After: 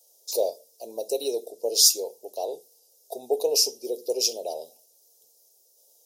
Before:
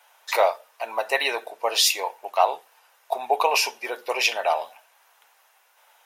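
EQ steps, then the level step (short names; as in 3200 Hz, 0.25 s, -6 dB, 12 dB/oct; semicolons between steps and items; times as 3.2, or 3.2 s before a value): Chebyshev band-stop 460–5200 Hz, order 3; dynamic EQ 2500 Hz, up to +4 dB, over -58 dBFS, Q 5.4; +5.5 dB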